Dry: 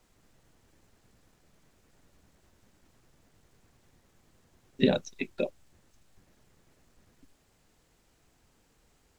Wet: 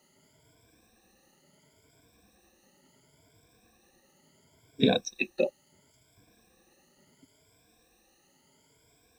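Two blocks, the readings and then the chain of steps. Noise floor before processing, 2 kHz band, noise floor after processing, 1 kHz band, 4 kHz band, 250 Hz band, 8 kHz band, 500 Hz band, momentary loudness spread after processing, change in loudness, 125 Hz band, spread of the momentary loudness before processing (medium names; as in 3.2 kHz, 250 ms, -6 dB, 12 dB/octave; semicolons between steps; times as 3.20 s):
-68 dBFS, +4.0 dB, -67 dBFS, +4.0 dB, +5.5 dB, +0.5 dB, no reading, +1.5 dB, 6 LU, +1.5 dB, 0.0 dB, 9 LU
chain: drifting ripple filter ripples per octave 1.7, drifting +0.72 Hz, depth 21 dB; high-pass 180 Hz 6 dB/octave; peaking EQ 1.3 kHz -6 dB 0.75 oct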